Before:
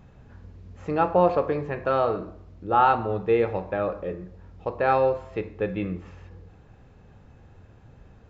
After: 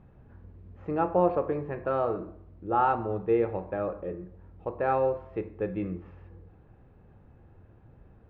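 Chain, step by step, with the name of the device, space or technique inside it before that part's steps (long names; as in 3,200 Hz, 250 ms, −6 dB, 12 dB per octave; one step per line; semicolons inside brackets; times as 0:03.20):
phone in a pocket (low-pass filter 3,200 Hz 12 dB per octave; parametric band 340 Hz +5 dB 0.21 octaves; high-shelf EQ 2,500 Hz −11 dB)
level −4 dB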